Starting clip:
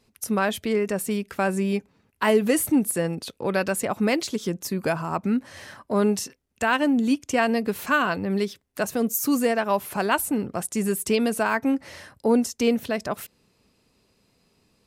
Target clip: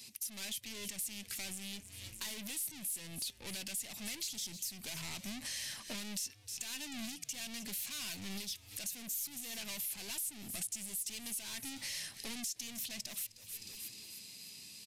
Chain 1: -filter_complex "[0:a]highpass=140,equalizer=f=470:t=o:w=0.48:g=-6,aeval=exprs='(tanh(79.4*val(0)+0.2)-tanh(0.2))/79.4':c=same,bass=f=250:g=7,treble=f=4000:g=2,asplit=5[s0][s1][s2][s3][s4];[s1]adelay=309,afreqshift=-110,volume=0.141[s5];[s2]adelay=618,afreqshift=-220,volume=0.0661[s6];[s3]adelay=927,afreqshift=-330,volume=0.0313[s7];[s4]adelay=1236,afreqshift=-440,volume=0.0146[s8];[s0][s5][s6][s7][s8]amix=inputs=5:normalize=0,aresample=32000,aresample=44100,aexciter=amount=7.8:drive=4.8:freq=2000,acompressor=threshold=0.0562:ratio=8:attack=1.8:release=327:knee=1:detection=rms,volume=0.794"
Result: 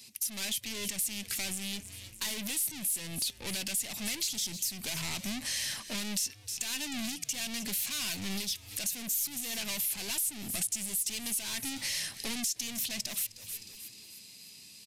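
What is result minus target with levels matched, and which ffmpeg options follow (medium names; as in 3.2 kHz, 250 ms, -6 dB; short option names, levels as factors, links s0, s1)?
compression: peak gain reduction -7.5 dB
-filter_complex "[0:a]highpass=140,equalizer=f=470:t=o:w=0.48:g=-6,aeval=exprs='(tanh(79.4*val(0)+0.2)-tanh(0.2))/79.4':c=same,bass=f=250:g=7,treble=f=4000:g=2,asplit=5[s0][s1][s2][s3][s4];[s1]adelay=309,afreqshift=-110,volume=0.141[s5];[s2]adelay=618,afreqshift=-220,volume=0.0661[s6];[s3]adelay=927,afreqshift=-330,volume=0.0313[s7];[s4]adelay=1236,afreqshift=-440,volume=0.0146[s8];[s0][s5][s6][s7][s8]amix=inputs=5:normalize=0,aresample=32000,aresample=44100,aexciter=amount=7.8:drive=4.8:freq=2000,acompressor=threshold=0.0211:ratio=8:attack=1.8:release=327:knee=1:detection=rms,volume=0.794"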